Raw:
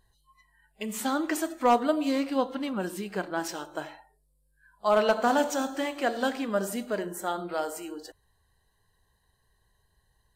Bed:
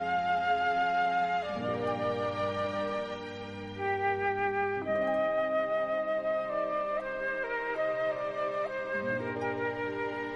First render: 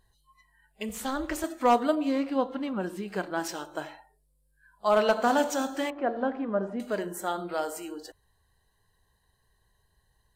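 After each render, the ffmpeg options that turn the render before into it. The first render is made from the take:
-filter_complex "[0:a]asettb=1/sr,asplit=3[a][b][c];[a]atrim=end=0.894[d];[b]atrim=start=0.89:end=1.44,asetpts=PTS-STARTPTS,afade=t=in:d=0.004:c=qsin,afade=t=out:st=0.546:d=0.004:c=qsin,tremolo=f=270:d=0.788[e];[c]atrim=start=1.436[f];[d][e]acrossfade=d=0.004:c1=hsin:c2=qsin[g];[g][f]acrossfade=d=0.004:c1=qsin:c2=hsin,asettb=1/sr,asplit=3[h][i][j];[h]atrim=end=1.954[k];[i]atrim=start=1.95:end=3.08,asetpts=PTS-STARTPTS,afade=t=in:d=0.004:c=qsin,afade=t=out:st=1.126:d=0.004:c=qsin,highshelf=f=3.6k:g=-11[l];[j]atrim=start=3.076[m];[k][l]acrossfade=d=0.004:c1=hsin:c2=qsin[n];[n][m]acrossfade=d=0.004:c1=qsin:c2=hsin,asettb=1/sr,asplit=3[o][p][q];[o]atrim=end=5.904[r];[p]atrim=start=5.9:end=6.8,asetpts=PTS-STARTPTS,afade=t=in:d=0.004:c=qsin,afade=t=out:st=0.896:d=0.004:c=qsin,lowpass=1.2k[s];[q]atrim=start=6.796[t];[r][s]acrossfade=d=0.004:c1=hsin:c2=qsin[u];[u][t]acrossfade=d=0.004:c1=qsin:c2=hsin"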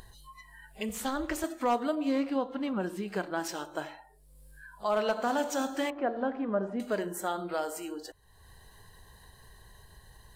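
-af "alimiter=limit=-20dB:level=0:latency=1:release=266,acompressor=mode=upward:threshold=-39dB:ratio=2.5"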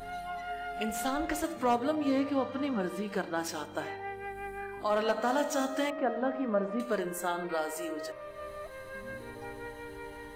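-filter_complex "[1:a]volume=-10dB[a];[0:a][a]amix=inputs=2:normalize=0"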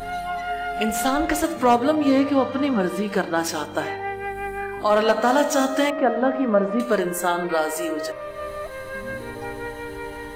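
-af "volume=10.5dB"

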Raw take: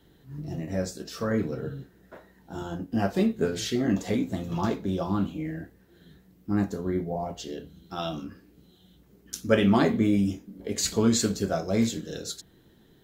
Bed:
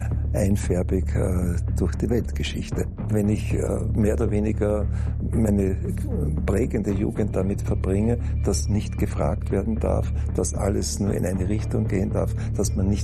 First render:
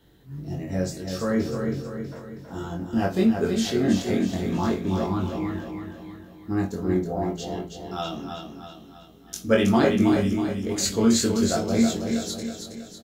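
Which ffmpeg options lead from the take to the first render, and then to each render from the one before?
-filter_complex "[0:a]asplit=2[a][b];[b]adelay=22,volume=-3dB[c];[a][c]amix=inputs=2:normalize=0,aecho=1:1:322|644|966|1288|1610|1932:0.501|0.241|0.115|0.0554|0.0266|0.0128"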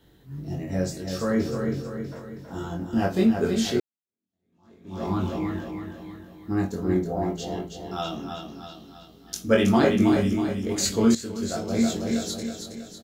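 -filter_complex "[0:a]asettb=1/sr,asplit=3[a][b][c];[a]atrim=end=8.484[d];[b]atrim=start=8.48:end=9.35,asetpts=PTS-STARTPTS,afade=t=in:d=0.004:c=qsin,afade=t=out:st=0.866:d=0.004:c=qsin,equalizer=f=4.6k:t=o:w=0.37:g=10.5[e];[c]atrim=start=9.346[f];[d][e]acrossfade=d=0.004:c1=hsin:c2=qsin[g];[g][f]acrossfade=d=0.004:c1=qsin:c2=hsin,asplit=3[h][i][j];[h]atrim=end=3.8,asetpts=PTS-STARTPTS,afade=t=out:st=3.796:d=0.004:c=hsin[k];[i]atrim=start=3.8:end=11.15,asetpts=PTS-STARTPTS,afade=t=in:d=1.29:c=exp,afade=t=out:st=7.346:d=0.004:c=hsin:silence=0.177828[l];[j]atrim=start=11.15,asetpts=PTS-STARTPTS,afade=t=in:d=0.92:silence=0.177828[m];[k][l][m]concat=n=3:v=0:a=1"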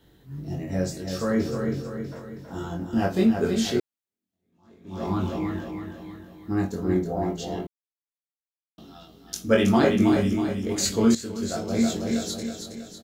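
-filter_complex "[0:a]asplit=3[a][b][c];[a]atrim=end=7.67,asetpts=PTS-STARTPTS,afade=t=out:st=7.666:d=0.004:c=hsin[d];[b]atrim=start=7.67:end=8.78,asetpts=PTS-STARTPTS,volume=0[e];[c]atrim=start=8.78,asetpts=PTS-STARTPTS,afade=t=in:d=0.004:c=hsin[f];[d][e][f]concat=n=3:v=0:a=1"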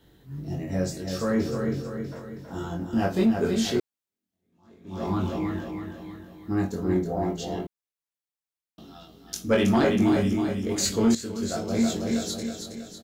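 -af "asoftclip=type=tanh:threshold=-12.5dB"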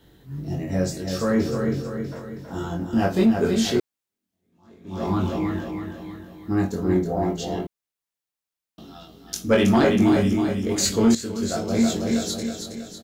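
-af "volume=3.5dB"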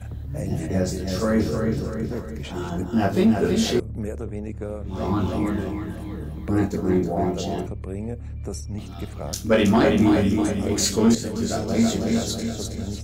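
-filter_complex "[1:a]volume=-9dB[a];[0:a][a]amix=inputs=2:normalize=0"

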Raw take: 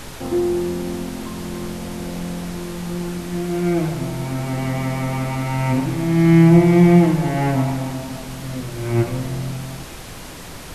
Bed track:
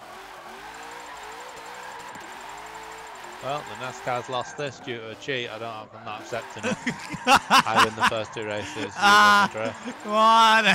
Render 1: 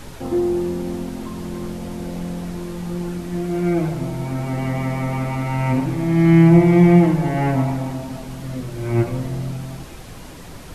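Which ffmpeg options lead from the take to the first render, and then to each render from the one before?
-af "afftdn=nr=6:nf=-35"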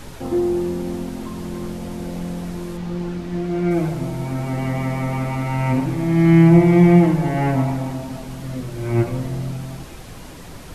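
-filter_complex "[0:a]asettb=1/sr,asplit=3[a][b][c];[a]atrim=end=2.774[d];[b]atrim=start=2.77:end=3.71,asetpts=PTS-STARTPTS,afade=t=in:d=0.004:c=qsin,afade=t=out:st=0.936:d=0.004:c=qsin,acrossover=split=5900[e][f];[f]acompressor=threshold=-60dB:ratio=4:attack=1:release=60[g];[e][g]amix=inputs=2:normalize=0[h];[c]atrim=start=3.706[i];[d][h]acrossfade=d=0.004:c1=hsin:c2=qsin[j];[j][i]acrossfade=d=0.004:c1=qsin:c2=hsin"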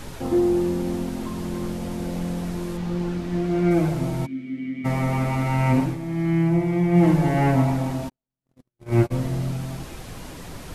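-filter_complex "[0:a]asplit=3[a][b][c];[a]afade=t=out:st=4.25:d=0.02[d];[b]asplit=3[e][f][g];[e]bandpass=f=270:t=q:w=8,volume=0dB[h];[f]bandpass=f=2.29k:t=q:w=8,volume=-6dB[i];[g]bandpass=f=3.01k:t=q:w=8,volume=-9dB[j];[h][i][j]amix=inputs=3:normalize=0,afade=t=in:st=4.25:d=0.02,afade=t=out:st=4.84:d=0.02[k];[c]afade=t=in:st=4.84:d=0.02[l];[d][k][l]amix=inputs=3:normalize=0,asplit=3[m][n][o];[m]afade=t=out:st=8.08:d=0.02[p];[n]agate=range=-60dB:threshold=-23dB:ratio=16:release=100:detection=peak,afade=t=in:st=8.08:d=0.02,afade=t=out:st=9.1:d=0.02[q];[o]afade=t=in:st=9.1:d=0.02[r];[p][q][r]amix=inputs=3:normalize=0,asplit=3[s][t][u];[s]atrim=end=5.99,asetpts=PTS-STARTPTS,afade=t=out:st=5.81:d=0.18:silence=0.334965[v];[t]atrim=start=5.99:end=6.91,asetpts=PTS-STARTPTS,volume=-9.5dB[w];[u]atrim=start=6.91,asetpts=PTS-STARTPTS,afade=t=in:d=0.18:silence=0.334965[x];[v][w][x]concat=n=3:v=0:a=1"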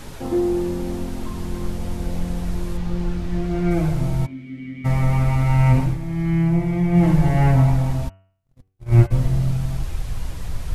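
-af "bandreject=f=95.08:t=h:w=4,bandreject=f=190.16:t=h:w=4,bandreject=f=285.24:t=h:w=4,bandreject=f=380.32:t=h:w=4,bandreject=f=475.4:t=h:w=4,bandreject=f=570.48:t=h:w=4,bandreject=f=665.56:t=h:w=4,bandreject=f=760.64:t=h:w=4,bandreject=f=855.72:t=h:w=4,bandreject=f=950.8:t=h:w=4,bandreject=f=1.04588k:t=h:w=4,bandreject=f=1.14096k:t=h:w=4,bandreject=f=1.23604k:t=h:w=4,bandreject=f=1.33112k:t=h:w=4,bandreject=f=1.4262k:t=h:w=4,bandreject=f=1.52128k:t=h:w=4,bandreject=f=1.61636k:t=h:w=4,bandreject=f=1.71144k:t=h:w=4,bandreject=f=1.80652k:t=h:w=4,bandreject=f=1.9016k:t=h:w=4,bandreject=f=1.99668k:t=h:w=4,bandreject=f=2.09176k:t=h:w=4,bandreject=f=2.18684k:t=h:w=4,bandreject=f=2.28192k:t=h:w=4,bandreject=f=2.377k:t=h:w=4,bandreject=f=2.47208k:t=h:w=4,bandreject=f=2.56716k:t=h:w=4,bandreject=f=2.66224k:t=h:w=4,bandreject=f=2.75732k:t=h:w=4,bandreject=f=2.8524k:t=h:w=4,bandreject=f=2.94748k:t=h:w=4,bandreject=f=3.04256k:t=h:w=4,bandreject=f=3.13764k:t=h:w=4,asubboost=boost=8.5:cutoff=90"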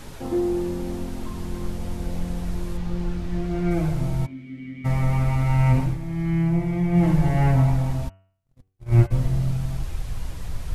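-af "volume=-3dB"

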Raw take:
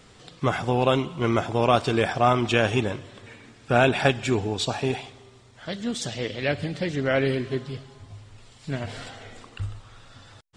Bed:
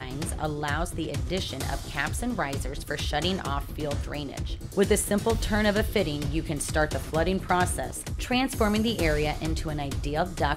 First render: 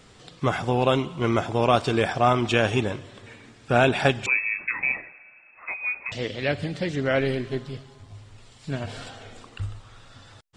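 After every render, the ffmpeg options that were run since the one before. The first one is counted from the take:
-filter_complex "[0:a]asettb=1/sr,asplit=3[a][b][c];[a]atrim=end=4.264[d];[b]atrim=start=4.26:end=6.12,asetpts=PTS-STARTPTS,afade=t=in:d=0.004:c=qsin,afade=t=out:st=1.856:d=0.004:c=qsin,lowpass=f=2.3k:t=q:w=0.5098,lowpass=f=2.3k:t=q:w=0.6013,lowpass=f=2.3k:t=q:w=0.9,lowpass=f=2.3k:t=q:w=2.563,afreqshift=-2700[e];[c]atrim=start=6.116[f];[d][e]acrossfade=d=0.004:c1=hsin:c2=qsin[g];[g][f]acrossfade=d=0.004:c1=qsin:c2=hsin,asettb=1/sr,asplit=3[h][i][j];[h]atrim=end=7.204[k];[i]atrim=start=7.2:end=8.15,asetpts=PTS-STARTPTS,afade=t=in:d=0.004:c=qsin,afade=t=out:st=0.946:d=0.004:c=qsin,aeval=exprs='if(lt(val(0),0),0.708*val(0),val(0))':c=same[l];[j]atrim=start=8.146[m];[k][l]acrossfade=d=0.004:c1=hsin:c2=qsin[n];[n][m]acrossfade=d=0.004:c1=qsin:c2=hsin,asettb=1/sr,asplit=3[o][p][q];[o]atrim=end=8.694[r];[p]atrim=start=8.69:end=9.47,asetpts=PTS-STARTPTS,afade=t=in:d=0.004:c=qsin,afade=t=out:st=0.776:d=0.004:c=qsin,bandreject=f=2k:w=8.3[s];[q]atrim=start=9.466[t];[r][s]acrossfade=d=0.004:c1=hsin:c2=qsin[u];[u][t]acrossfade=d=0.004:c1=qsin:c2=hsin"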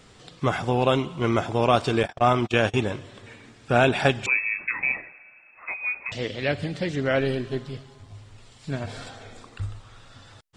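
-filter_complex "[0:a]asettb=1/sr,asplit=3[a][b][c];[a]atrim=end=2.034[d];[b]atrim=start=2.03:end=2.74,asetpts=PTS-STARTPTS,afade=t=in:d=0.004:c=qsin,afade=t=out:st=0.706:d=0.004:c=qsin,agate=range=-37dB:threshold=-26dB:ratio=16:release=100:detection=peak[e];[c]atrim=start=2.736[f];[d][e]acrossfade=d=0.004:c1=hsin:c2=qsin[g];[g][f]acrossfade=d=0.004:c1=qsin:c2=hsin,asettb=1/sr,asplit=3[h][i][j];[h]atrim=end=7.164[k];[i]atrim=start=7.16:end=7.56,asetpts=PTS-STARTPTS,afade=t=in:d=0.004:c=qsin,afade=t=out:st=0.396:d=0.004:c=qsin,bandreject=f=2.1k:w=6.5[l];[j]atrim=start=7.556[m];[k][l]acrossfade=d=0.004:c1=hsin:c2=qsin[n];[n][m]acrossfade=d=0.004:c1=qsin:c2=hsin,asettb=1/sr,asplit=3[o][p][q];[o]atrim=end=8.704[r];[p]atrim=start=8.7:end=9.72,asetpts=PTS-STARTPTS,afade=t=in:d=0.004:c=qsin,afade=t=out:st=1.016:d=0.004:c=qsin,bandreject=f=2.9k:w=8.4[s];[q]atrim=start=9.716[t];[r][s]acrossfade=d=0.004:c1=hsin:c2=qsin[u];[u][t]acrossfade=d=0.004:c1=qsin:c2=hsin"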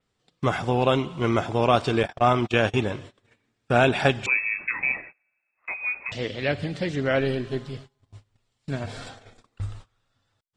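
-af "agate=range=-24dB:threshold=-41dB:ratio=16:detection=peak,adynamicequalizer=threshold=0.00631:dfrequency=5800:dqfactor=0.7:tfrequency=5800:tqfactor=0.7:attack=5:release=100:ratio=0.375:range=2.5:mode=cutabove:tftype=highshelf"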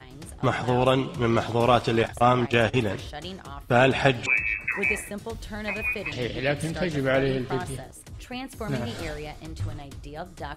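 -filter_complex "[1:a]volume=-10dB[a];[0:a][a]amix=inputs=2:normalize=0"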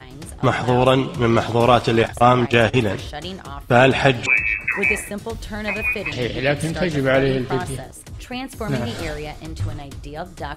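-af "volume=6dB,alimiter=limit=-1dB:level=0:latency=1"

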